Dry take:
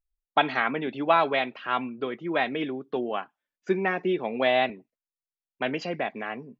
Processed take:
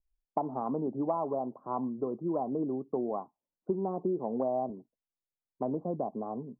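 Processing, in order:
Butterworth low-pass 1,100 Hz 72 dB per octave
low-shelf EQ 480 Hz +7 dB
downward compressor 4 to 1, threshold −24 dBFS, peak gain reduction 9 dB
level −4 dB

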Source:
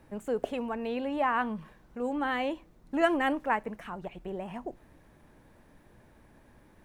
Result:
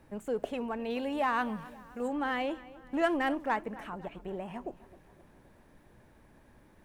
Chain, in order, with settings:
0:00.90–0:02.08: high-shelf EQ 3,900 Hz +10 dB
in parallel at −7.5 dB: gain into a clipping stage and back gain 27 dB
on the sum: feedback echo with a low-pass in the loop 263 ms, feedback 53%, low-pass 4,200 Hz, level −18.5 dB
level −4.5 dB

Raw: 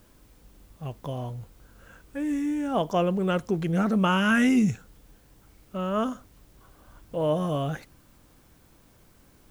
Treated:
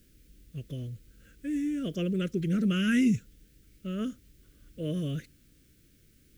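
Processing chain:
phase-vocoder stretch with locked phases 0.67×
Butterworth band-reject 870 Hz, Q 0.6
level −2 dB

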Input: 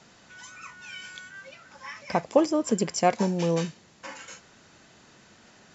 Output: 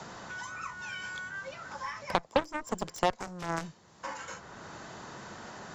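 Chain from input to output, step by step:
graphic EQ with 15 bands 250 Hz −4 dB, 1,000 Hz +5 dB, 2,500 Hz −6 dB
harmonic generator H 3 −29 dB, 6 −32 dB, 7 −15 dB, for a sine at −6.5 dBFS
multiband upward and downward compressor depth 70%

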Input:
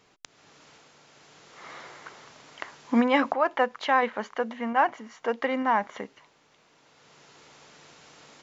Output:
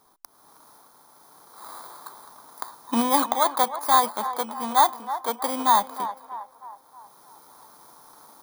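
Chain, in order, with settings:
samples in bit-reversed order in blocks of 16 samples
graphic EQ with 10 bands 125 Hz −11 dB, 500 Hz −6 dB, 1,000 Hz +11 dB, 2,000 Hz −8 dB
feedback echo with a band-pass in the loop 318 ms, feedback 51%, band-pass 920 Hz, level −11 dB
level +1 dB

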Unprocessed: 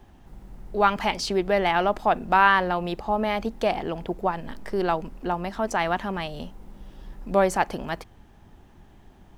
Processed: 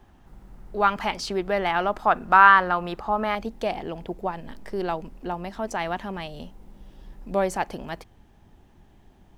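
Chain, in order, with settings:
parametric band 1,300 Hz +4 dB 0.86 octaves, from 0:01.97 +11 dB, from 0:03.35 −2.5 dB
level −3 dB

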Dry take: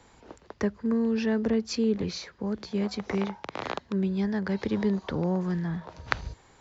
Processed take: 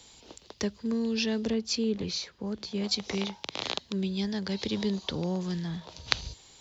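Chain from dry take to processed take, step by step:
high shelf with overshoot 2,400 Hz +13 dB, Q 1.5, from 0:01.53 +6.5 dB, from 0:02.84 +12.5 dB
level −3.5 dB

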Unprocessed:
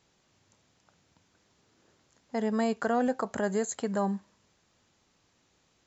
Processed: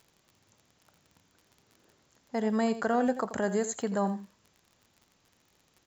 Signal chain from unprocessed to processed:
surface crackle 38 per second −45 dBFS
on a send: single-tap delay 84 ms −12.5 dB

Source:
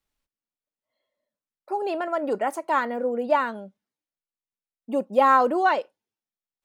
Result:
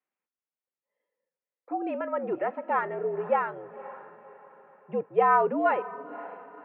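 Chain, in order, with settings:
single-sideband voice off tune −70 Hz 310–2,600 Hz
feedback delay with all-pass diffusion 530 ms, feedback 41%, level −16 dB
level −3.5 dB

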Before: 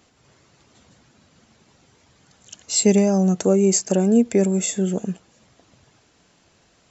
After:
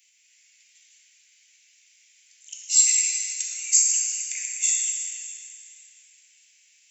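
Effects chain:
Butterworth high-pass 2,200 Hz 48 dB per octave
parametric band 3,900 Hz −11 dB 1.1 octaves
dense smooth reverb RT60 3.1 s, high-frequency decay 0.8×, DRR −2.5 dB
level +5.5 dB

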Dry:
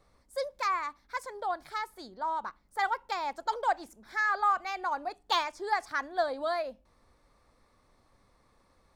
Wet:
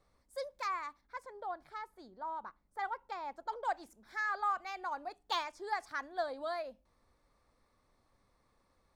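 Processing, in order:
0:01.01–0:03.65: high-shelf EQ 2,600 Hz −11 dB
level −7 dB

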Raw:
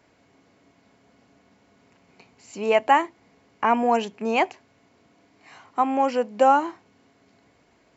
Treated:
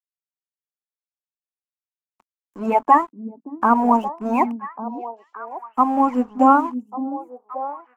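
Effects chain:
spectral magnitudes quantised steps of 30 dB
high-shelf EQ 3,500 Hz −10.5 dB
dead-zone distortion −44 dBFS
graphic EQ with 10 bands 125 Hz −5 dB, 250 Hz +8 dB, 500 Hz −7 dB, 1,000 Hz +10 dB, 2,000 Hz −5 dB, 4,000 Hz −11 dB
echo through a band-pass that steps 572 ms, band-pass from 230 Hz, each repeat 1.4 octaves, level −7 dB
level +1.5 dB

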